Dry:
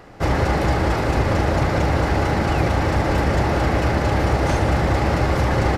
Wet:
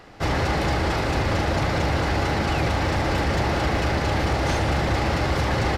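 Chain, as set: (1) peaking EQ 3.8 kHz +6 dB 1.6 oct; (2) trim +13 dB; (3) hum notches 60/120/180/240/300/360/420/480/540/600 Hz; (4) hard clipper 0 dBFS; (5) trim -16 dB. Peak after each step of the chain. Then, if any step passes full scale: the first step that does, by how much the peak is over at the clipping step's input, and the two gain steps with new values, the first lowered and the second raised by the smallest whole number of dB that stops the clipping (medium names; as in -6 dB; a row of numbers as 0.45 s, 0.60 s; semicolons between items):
-5.5 dBFS, +7.5 dBFS, +6.5 dBFS, 0.0 dBFS, -16.0 dBFS; step 2, 6.5 dB; step 2 +6 dB, step 5 -9 dB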